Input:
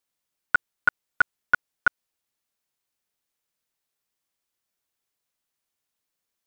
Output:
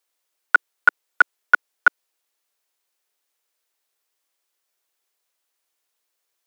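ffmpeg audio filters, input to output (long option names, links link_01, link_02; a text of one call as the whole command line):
ffmpeg -i in.wav -af "highpass=frequency=340:width=0.5412,highpass=frequency=340:width=1.3066,volume=6dB" out.wav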